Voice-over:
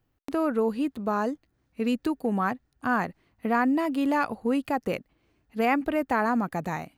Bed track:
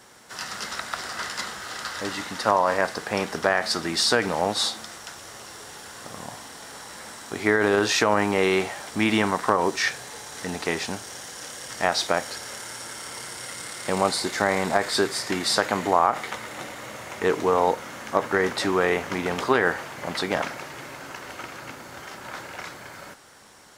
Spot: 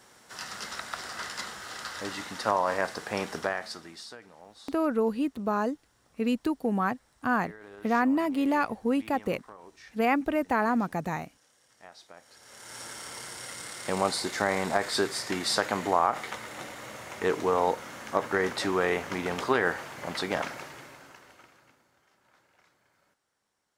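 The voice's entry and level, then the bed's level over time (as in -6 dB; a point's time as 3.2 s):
4.40 s, -1.0 dB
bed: 3.37 s -5.5 dB
4.23 s -27.5 dB
12.15 s -27.5 dB
12.79 s -4.5 dB
20.61 s -4.5 dB
21.99 s -28.5 dB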